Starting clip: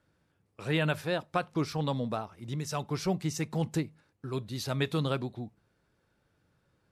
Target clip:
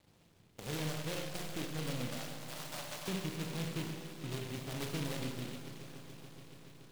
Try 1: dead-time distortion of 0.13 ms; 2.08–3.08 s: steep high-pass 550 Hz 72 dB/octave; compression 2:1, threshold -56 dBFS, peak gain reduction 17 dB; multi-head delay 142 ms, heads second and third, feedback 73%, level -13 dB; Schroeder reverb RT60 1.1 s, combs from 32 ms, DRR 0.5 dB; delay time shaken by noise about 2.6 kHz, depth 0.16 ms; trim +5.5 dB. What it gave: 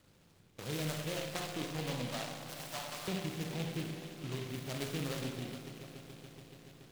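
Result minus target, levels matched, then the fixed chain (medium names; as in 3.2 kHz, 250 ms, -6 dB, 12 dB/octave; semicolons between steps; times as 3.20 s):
dead-time distortion: distortion -8 dB
dead-time distortion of 0.48 ms; 2.08–3.08 s: steep high-pass 550 Hz 72 dB/octave; compression 2:1, threshold -56 dBFS, peak gain reduction 16.5 dB; multi-head delay 142 ms, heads second and third, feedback 73%, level -13 dB; Schroeder reverb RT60 1.1 s, combs from 32 ms, DRR 0.5 dB; delay time shaken by noise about 2.6 kHz, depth 0.16 ms; trim +5.5 dB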